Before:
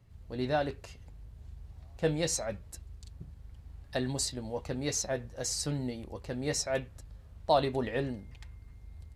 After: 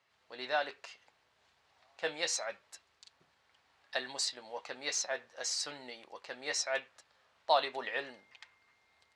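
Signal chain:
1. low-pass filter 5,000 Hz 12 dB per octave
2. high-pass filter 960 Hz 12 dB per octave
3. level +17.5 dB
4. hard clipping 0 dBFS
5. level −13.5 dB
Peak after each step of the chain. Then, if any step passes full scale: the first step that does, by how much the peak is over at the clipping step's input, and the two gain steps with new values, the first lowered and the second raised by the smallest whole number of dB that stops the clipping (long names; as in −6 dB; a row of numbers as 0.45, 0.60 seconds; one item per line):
−13.5, −19.0, −1.5, −1.5, −15.0 dBFS
no step passes full scale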